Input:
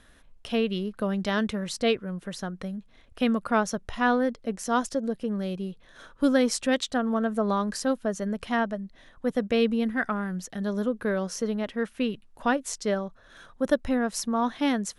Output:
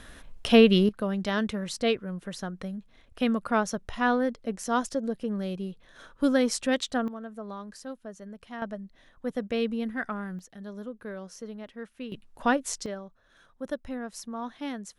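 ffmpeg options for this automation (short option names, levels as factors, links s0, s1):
-af "asetnsamples=n=441:p=0,asendcmd='0.89 volume volume -1.5dB;7.08 volume volume -13.5dB;8.62 volume volume -5dB;10.39 volume volume -11.5dB;12.12 volume volume 0.5dB;12.86 volume volume -10dB',volume=2.82"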